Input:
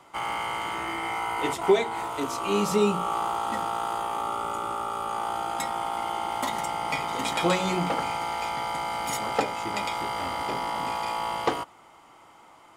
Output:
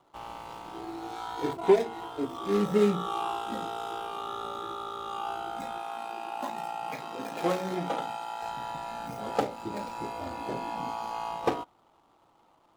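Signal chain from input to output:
running median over 25 samples
noise reduction from a noise print of the clip's start 8 dB
0:05.78–0:08.42: high-pass filter 350 Hz 6 dB per octave

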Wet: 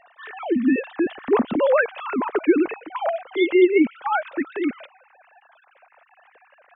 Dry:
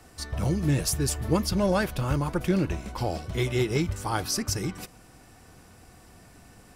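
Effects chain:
three sine waves on the formant tracks
level +5.5 dB

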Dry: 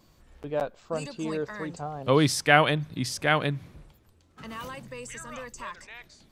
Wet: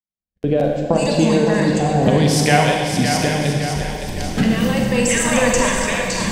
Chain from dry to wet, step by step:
camcorder AGC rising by 35 dB per second
noise gate −33 dBFS, range −53 dB
thirty-one-band graphic EQ 200 Hz +10 dB, 800 Hz +7 dB, 1,250 Hz −11 dB
in parallel at +2 dB: downward compressor, threshold −25 dBFS, peak gain reduction 14.5 dB
on the sum: rotating-speaker cabinet horn 0.7 Hz
on a send: echo with a time of its own for lows and highs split 410 Hz, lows 158 ms, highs 563 ms, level −7 dB
on the sum: four-comb reverb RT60 1.7 s, combs from 33 ms, DRR 1 dB
level −1.5 dB

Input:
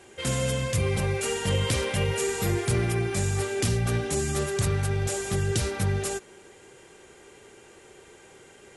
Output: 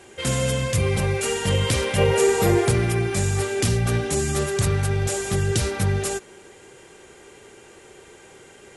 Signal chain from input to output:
0:01.98–0:02.71: parametric band 590 Hz +8 dB 2.2 octaves
level +4 dB

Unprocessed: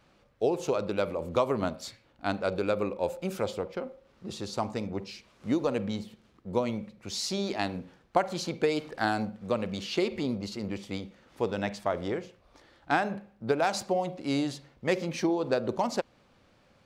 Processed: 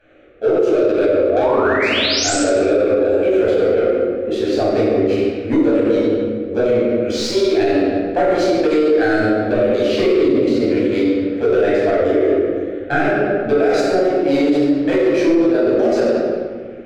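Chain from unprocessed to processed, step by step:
adaptive Wiener filter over 9 samples
parametric band 870 Hz −7 dB 0.44 octaves
mains-hum notches 50/100/150/200/250/300/350 Hz
dynamic equaliser 2,900 Hz, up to −4 dB, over −49 dBFS, Q 1.4
phaser with its sweep stopped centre 400 Hz, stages 4
in parallel at +3 dB: speech leveller within 3 dB 0.5 s
on the sum: mid-hump overdrive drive 19 dB, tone 1,000 Hz, clips at −7.5 dBFS
sound drawn into the spectrogram rise, 0:01.30–0:02.34, 620–8,400 Hz −25 dBFS
convolution reverb RT60 1.7 s, pre-delay 13 ms, DRR −8.5 dB
boost into a limiter +3 dB
level −6 dB

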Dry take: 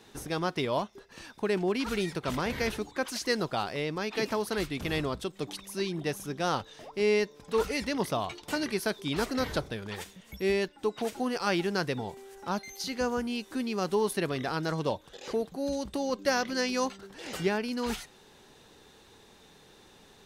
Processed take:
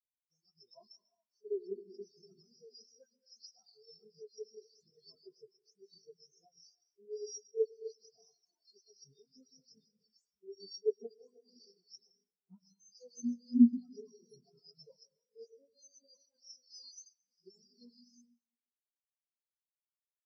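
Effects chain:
every frequency bin delayed by itself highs late, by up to 206 ms
high shelf with overshoot 3,700 Hz +11 dB, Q 3
downward expander −37 dBFS
parametric band 5,700 Hz +9 dB 1.2 octaves
reversed playback
downward compressor 6 to 1, threshold −29 dBFS, peak gain reduction 18.5 dB
reversed playback
flanger 0.81 Hz, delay 7.7 ms, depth 9.9 ms, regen +31%
notch comb filter 290 Hz
echo ahead of the sound 42 ms −12.5 dB
on a send at −1 dB: convolution reverb RT60 3.1 s, pre-delay 103 ms
on the sum: every bin expanded away from the loudest bin 4 to 1
level +7.5 dB

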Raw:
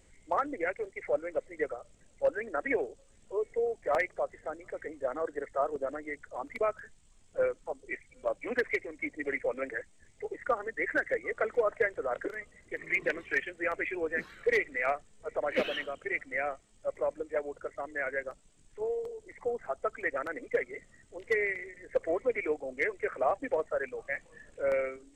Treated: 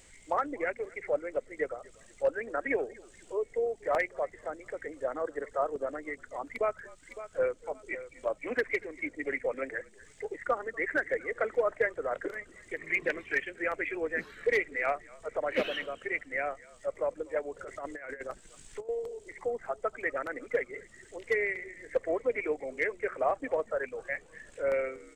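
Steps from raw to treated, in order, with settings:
0:17.59–0:18.89: compressor whose output falls as the input rises −39 dBFS, ratio −0.5
echo with shifted repeats 240 ms, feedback 31%, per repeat −52 Hz, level −24 dB
0:06.46–0:07.56: delay throw 560 ms, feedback 25%, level −14.5 dB
one half of a high-frequency compander encoder only

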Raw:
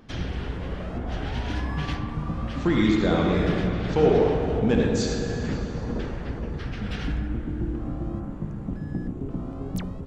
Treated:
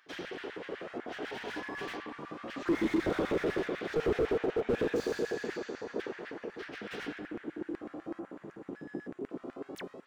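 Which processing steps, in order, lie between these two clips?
auto-filter high-pass square 8 Hz 380–1,700 Hz
slew-rate limiting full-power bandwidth 46 Hz
level −6 dB

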